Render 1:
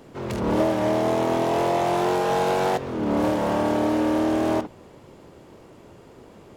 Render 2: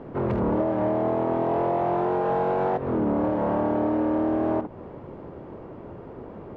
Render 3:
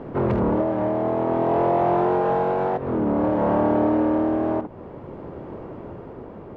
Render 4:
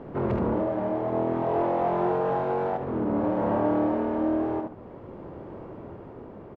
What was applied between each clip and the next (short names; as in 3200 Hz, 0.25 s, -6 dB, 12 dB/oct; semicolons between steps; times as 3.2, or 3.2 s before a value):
LPF 1300 Hz 12 dB/oct; compressor 6:1, threshold -29 dBFS, peak gain reduction 11.5 dB; gain +7.5 dB
tremolo 0.54 Hz, depth 34%; gain +4.5 dB
echo 73 ms -6.5 dB; gain -5.5 dB